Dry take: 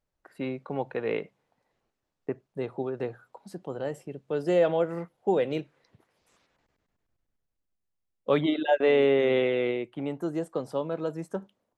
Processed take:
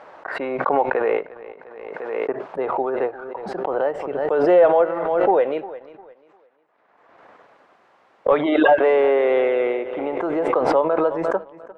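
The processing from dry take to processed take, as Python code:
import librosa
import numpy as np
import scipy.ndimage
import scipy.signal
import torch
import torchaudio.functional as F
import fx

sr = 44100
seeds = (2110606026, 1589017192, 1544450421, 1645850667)

p1 = scipy.signal.sosfilt(scipy.signal.butter(2, 750.0, 'highpass', fs=sr, output='sos'), x)
p2 = p1 + fx.echo_feedback(p1, sr, ms=351, feedback_pct=37, wet_db=-17, dry=0)
p3 = fx.leveller(p2, sr, passes=1)
p4 = fx.rider(p3, sr, range_db=4, speed_s=2.0)
p5 = p3 + (p4 * librosa.db_to_amplitude(0.0))
p6 = scipy.signal.sosfilt(scipy.signal.butter(2, 1100.0, 'lowpass', fs=sr, output='sos'), p5)
p7 = fx.pre_swell(p6, sr, db_per_s=33.0)
y = p7 * librosa.db_to_amplitude(6.5)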